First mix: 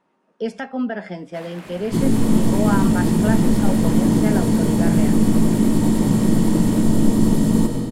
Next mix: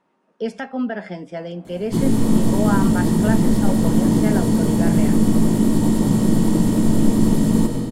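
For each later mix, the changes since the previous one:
first sound: add two resonant band-passes 340 Hz, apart 2 oct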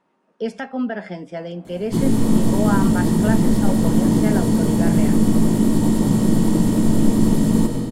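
no change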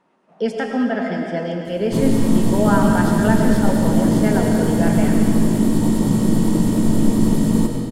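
speech: send on; first sound: entry -1.05 s

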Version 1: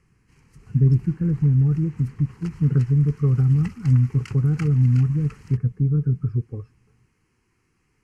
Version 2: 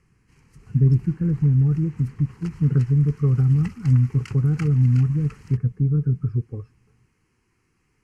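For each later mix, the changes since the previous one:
no change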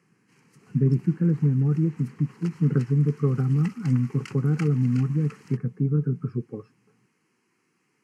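speech +3.5 dB; master: add high-pass 170 Hz 24 dB/octave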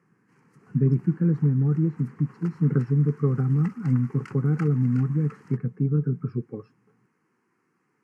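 background: add resonant high shelf 2.1 kHz -9 dB, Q 1.5

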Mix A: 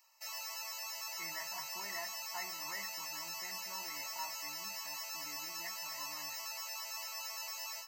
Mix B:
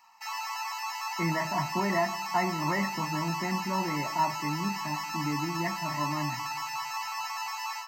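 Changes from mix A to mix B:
background: add brick-wall FIR high-pass 700 Hz; master: remove differentiator

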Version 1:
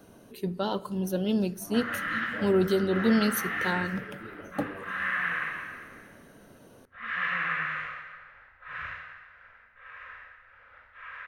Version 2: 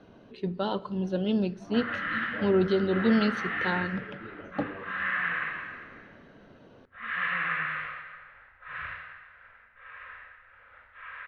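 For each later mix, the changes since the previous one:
master: add low-pass 4.2 kHz 24 dB/octave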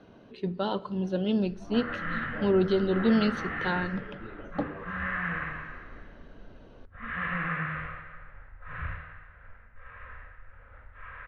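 background: add tilt EQ -4.5 dB/octave

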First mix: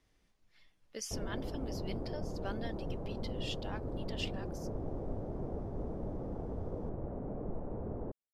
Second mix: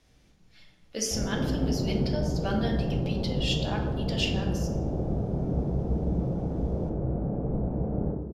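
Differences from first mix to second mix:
speech +7.5 dB; reverb: on, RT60 1.2 s

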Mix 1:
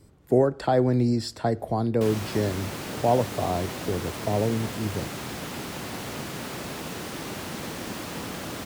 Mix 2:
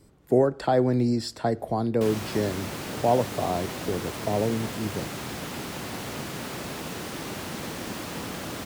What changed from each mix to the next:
speech: add peaking EQ 87 Hz -5.5 dB 0.92 oct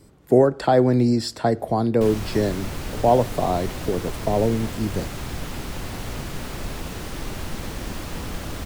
speech +5.0 dB; background: remove high-pass 150 Hz 12 dB/octave

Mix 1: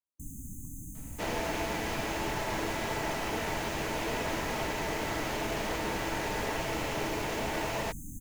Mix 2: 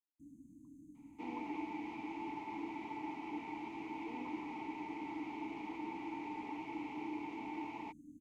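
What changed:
speech +9.0 dB; master: add vowel filter u

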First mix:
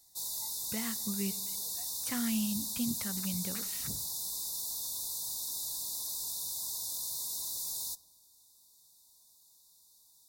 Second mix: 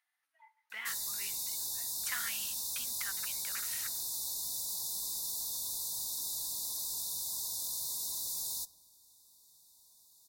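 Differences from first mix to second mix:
speech: add resonant high-pass 1.5 kHz, resonance Q 2.1; background: entry +0.70 s

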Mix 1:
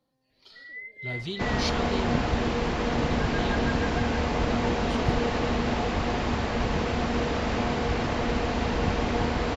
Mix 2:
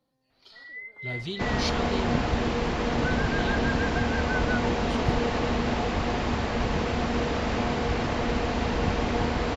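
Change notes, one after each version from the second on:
first sound: remove brick-wall FIR band-stop 660–1600 Hz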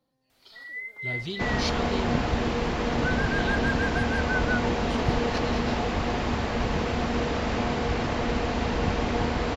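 first sound: remove distance through air 380 m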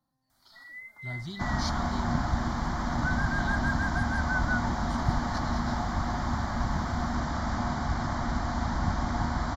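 master: add static phaser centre 1.1 kHz, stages 4

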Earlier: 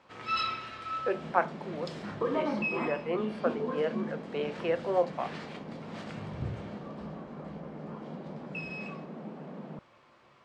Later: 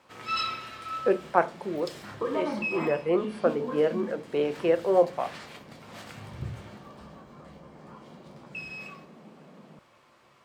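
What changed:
speech: remove high-pass 880 Hz 6 dB/octave; second sound -8.5 dB; master: remove distance through air 94 m

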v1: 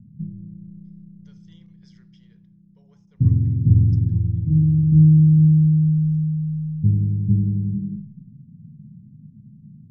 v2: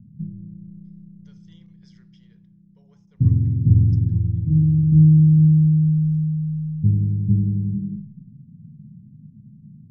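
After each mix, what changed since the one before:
no change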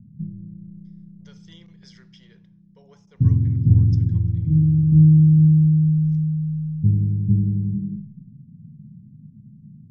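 speech +10.0 dB

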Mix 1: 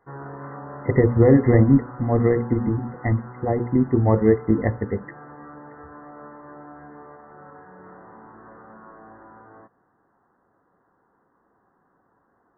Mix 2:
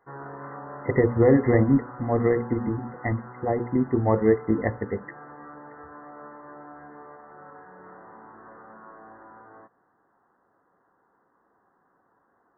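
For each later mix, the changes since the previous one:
master: add bass shelf 260 Hz -8 dB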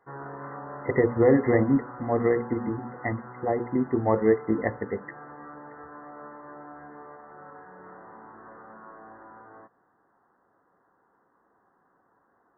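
speech: add bass shelf 130 Hz -10.5 dB

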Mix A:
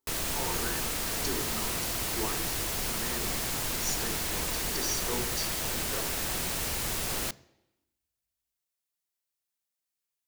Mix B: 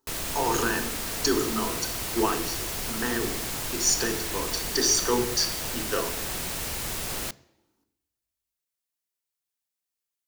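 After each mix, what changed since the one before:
speech +11.5 dB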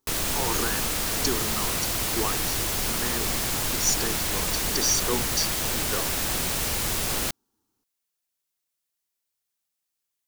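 background +5.5 dB; reverb: off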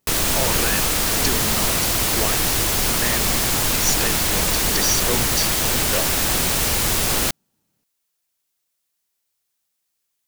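speech: remove static phaser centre 600 Hz, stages 6; background +7.0 dB

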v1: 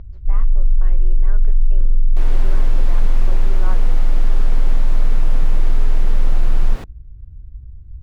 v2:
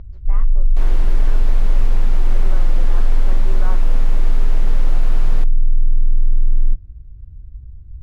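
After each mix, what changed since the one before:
second sound: entry -1.40 s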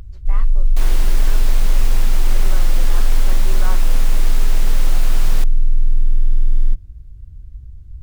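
first sound: remove distance through air 84 m; master: remove low-pass 1.2 kHz 6 dB/octave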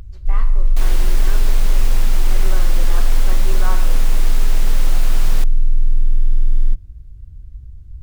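reverb: on, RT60 1.7 s

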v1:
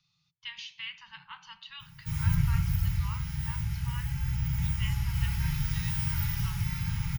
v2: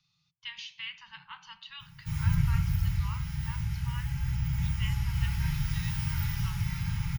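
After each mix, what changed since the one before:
background: add treble shelf 9.8 kHz -6 dB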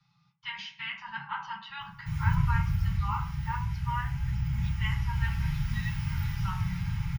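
speech: send on; master: add treble shelf 5 kHz -10.5 dB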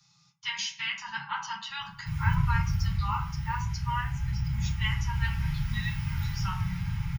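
speech: remove distance through air 330 m

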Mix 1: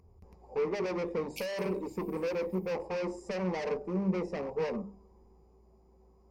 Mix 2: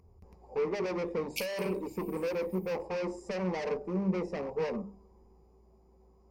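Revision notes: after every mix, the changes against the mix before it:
background +7.0 dB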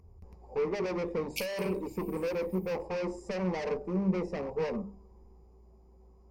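master: add bass shelf 100 Hz +7.5 dB

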